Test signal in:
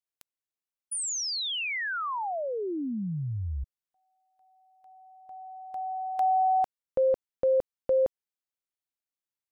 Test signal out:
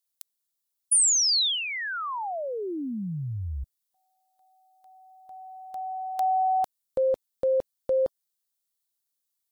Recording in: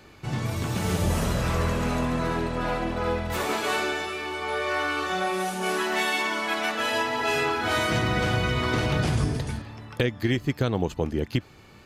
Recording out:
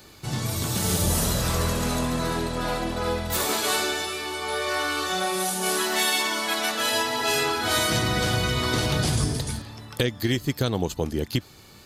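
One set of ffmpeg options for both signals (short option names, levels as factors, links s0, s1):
-af "aexciter=amount=4.2:drive=1.1:freq=3500" -ar 44100 -c:a aac -b:a 128k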